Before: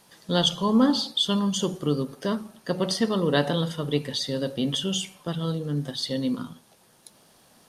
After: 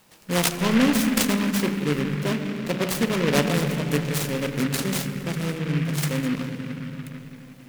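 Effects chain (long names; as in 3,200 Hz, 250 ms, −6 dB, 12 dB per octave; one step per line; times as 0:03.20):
on a send at −8.5 dB: RIAA equalisation playback + convolution reverb RT60 3.8 s, pre-delay 95 ms
on the sum: short delay modulated by noise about 1,800 Hz, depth 0.15 ms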